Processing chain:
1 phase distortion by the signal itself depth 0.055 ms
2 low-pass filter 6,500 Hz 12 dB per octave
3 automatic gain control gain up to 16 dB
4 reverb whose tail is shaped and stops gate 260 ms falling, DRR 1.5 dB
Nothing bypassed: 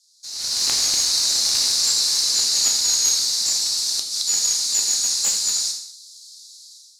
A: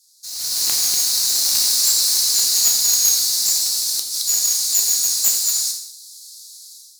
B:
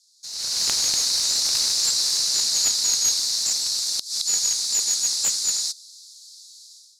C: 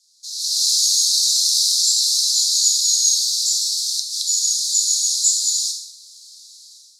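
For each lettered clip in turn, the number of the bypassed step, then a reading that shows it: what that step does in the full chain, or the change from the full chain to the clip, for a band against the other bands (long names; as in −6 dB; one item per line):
2, 8 kHz band +4.0 dB
4, change in crest factor +2.5 dB
1, change in integrated loudness +2.0 LU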